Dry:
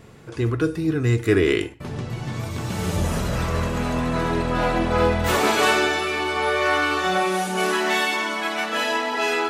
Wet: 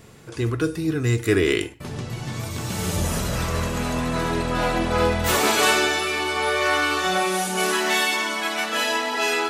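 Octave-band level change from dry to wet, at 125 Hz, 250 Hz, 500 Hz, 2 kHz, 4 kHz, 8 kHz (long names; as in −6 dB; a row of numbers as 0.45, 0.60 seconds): −1.5, −1.5, −1.5, 0.0, +2.5, +5.5 decibels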